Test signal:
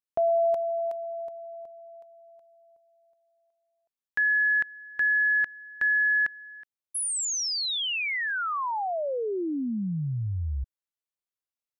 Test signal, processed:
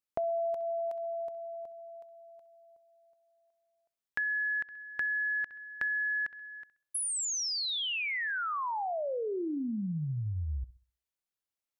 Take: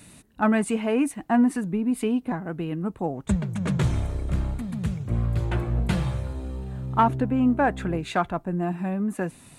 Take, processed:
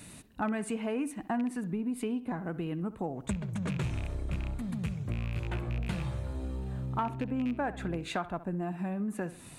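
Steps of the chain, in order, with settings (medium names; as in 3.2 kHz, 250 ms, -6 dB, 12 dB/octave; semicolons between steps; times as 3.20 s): rattle on loud lows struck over -21 dBFS, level -23 dBFS; on a send: bucket-brigade echo 65 ms, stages 2048, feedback 32%, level -17 dB; on the sum: compression 3:1, threshold -33 dBFS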